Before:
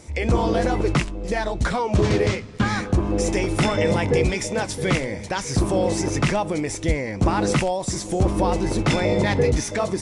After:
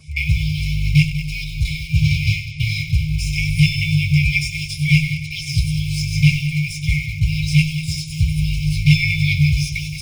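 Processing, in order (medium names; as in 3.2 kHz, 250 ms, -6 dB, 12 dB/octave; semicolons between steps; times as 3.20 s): multi-head delay 97 ms, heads first and second, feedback 42%, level -13 dB; in parallel at -11 dB: bit crusher 4-bit; on the sum: FFT band-reject 160–2100 Hz; 8.93–9.60 s: dynamic bell 2.1 kHz, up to +5 dB, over -39 dBFS, Q 3.6; reverberation RT60 0.15 s, pre-delay 3 ms, DRR -7.5 dB; trim -4.5 dB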